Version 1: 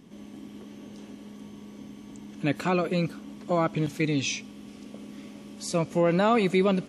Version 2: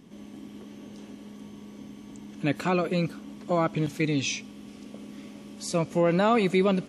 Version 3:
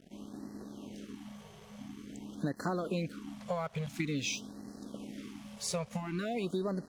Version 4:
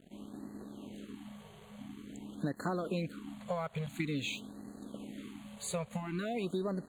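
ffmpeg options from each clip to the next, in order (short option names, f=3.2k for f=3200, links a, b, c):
-af anull
-af "acompressor=threshold=-29dB:ratio=16,aeval=exprs='sgn(val(0))*max(abs(val(0))-0.00211,0)':c=same,afftfilt=real='re*(1-between(b*sr/1024,270*pow(2900/270,0.5+0.5*sin(2*PI*0.48*pts/sr))/1.41,270*pow(2900/270,0.5+0.5*sin(2*PI*0.48*pts/sr))*1.41))':imag='im*(1-between(b*sr/1024,270*pow(2900/270,0.5+0.5*sin(2*PI*0.48*pts/sr))/1.41,270*pow(2900/270,0.5+0.5*sin(2*PI*0.48*pts/sr))*1.41))':win_size=1024:overlap=0.75"
-af "asuperstop=centerf=5400:order=8:qfactor=2.6,volume=-1dB"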